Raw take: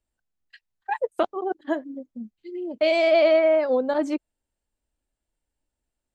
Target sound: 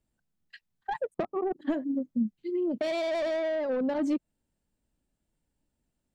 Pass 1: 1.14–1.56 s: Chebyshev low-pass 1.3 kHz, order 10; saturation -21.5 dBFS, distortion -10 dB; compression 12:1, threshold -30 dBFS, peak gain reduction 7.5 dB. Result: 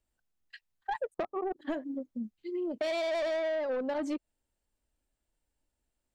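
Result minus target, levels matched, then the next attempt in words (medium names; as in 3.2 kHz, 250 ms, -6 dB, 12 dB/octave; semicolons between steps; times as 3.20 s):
125 Hz band -7.0 dB
1.14–1.56 s: Chebyshev low-pass 1.3 kHz, order 10; saturation -21.5 dBFS, distortion -10 dB; compression 12:1, threshold -30 dBFS, peak gain reduction 7.5 dB; peaking EQ 170 Hz +12.5 dB 1.7 oct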